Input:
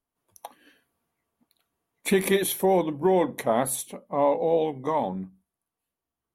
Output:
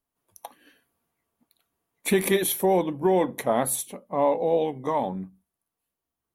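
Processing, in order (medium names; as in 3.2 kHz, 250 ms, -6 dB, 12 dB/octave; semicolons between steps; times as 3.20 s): treble shelf 11 kHz +5 dB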